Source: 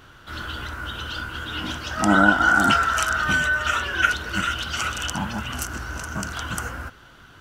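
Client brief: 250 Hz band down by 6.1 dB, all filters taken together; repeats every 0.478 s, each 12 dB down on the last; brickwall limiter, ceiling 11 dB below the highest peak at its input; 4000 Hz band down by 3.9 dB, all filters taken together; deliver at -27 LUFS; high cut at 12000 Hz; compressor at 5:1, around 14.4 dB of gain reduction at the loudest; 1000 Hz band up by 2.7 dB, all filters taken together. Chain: LPF 12000 Hz; bell 250 Hz -8.5 dB; bell 1000 Hz +5.5 dB; bell 4000 Hz -6.5 dB; compressor 5:1, threshold -28 dBFS; limiter -23 dBFS; feedback echo 0.478 s, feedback 25%, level -12 dB; gain +5 dB

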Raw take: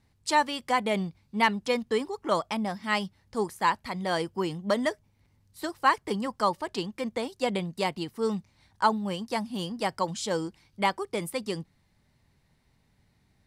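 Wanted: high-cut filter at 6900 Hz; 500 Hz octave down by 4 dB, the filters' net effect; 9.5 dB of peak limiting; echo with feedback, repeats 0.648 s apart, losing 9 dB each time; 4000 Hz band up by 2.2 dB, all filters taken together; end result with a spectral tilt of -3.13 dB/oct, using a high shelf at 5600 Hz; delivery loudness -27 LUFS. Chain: LPF 6900 Hz; bell 500 Hz -5 dB; bell 4000 Hz +6.5 dB; high shelf 5600 Hz -8.5 dB; limiter -19.5 dBFS; feedback echo 0.648 s, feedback 35%, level -9 dB; gain +5.5 dB

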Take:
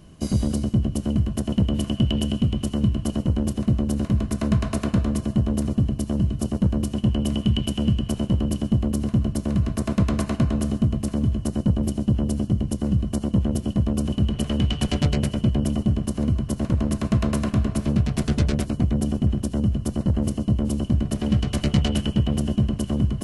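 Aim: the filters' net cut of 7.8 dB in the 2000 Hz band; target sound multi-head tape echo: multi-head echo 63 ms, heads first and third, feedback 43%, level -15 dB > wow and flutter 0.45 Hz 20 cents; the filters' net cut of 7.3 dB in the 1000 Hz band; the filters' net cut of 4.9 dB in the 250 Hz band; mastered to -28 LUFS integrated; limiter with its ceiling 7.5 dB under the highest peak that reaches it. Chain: bell 250 Hz -6 dB; bell 1000 Hz -8 dB; bell 2000 Hz -8 dB; limiter -17 dBFS; multi-head echo 63 ms, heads first and third, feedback 43%, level -15 dB; wow and flutter 0.45 Hz 20 cents; gain -0.5 dB

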